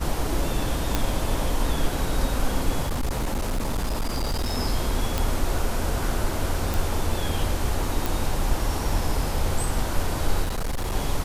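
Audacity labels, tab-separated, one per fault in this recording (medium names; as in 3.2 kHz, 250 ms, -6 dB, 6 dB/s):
0.950000	0.950000	pop -6 dBFS
2.820000	4.540000	clipped -21.5 dBFS
5.180000	5.180000	pop
6.740000	6.740000	pop
8.060000	8.060000	pop
10.430000	10.930000	clipped -23 dBFS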